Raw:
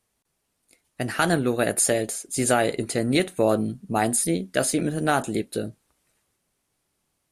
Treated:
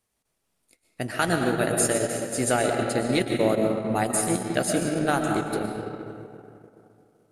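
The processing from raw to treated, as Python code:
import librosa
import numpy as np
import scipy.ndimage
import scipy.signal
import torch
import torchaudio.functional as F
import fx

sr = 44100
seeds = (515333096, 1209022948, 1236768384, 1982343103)

y = fx.rev_freeverb(x, sr, rt60_s=2.8, hf_ratio=0.55, predelay_ms=80, drr_db=1.0)
y = fx.transient(y, sr, attack_db=1, sustain_db=-8)
y = y * 10.0 ** (-3.0 / 20.0)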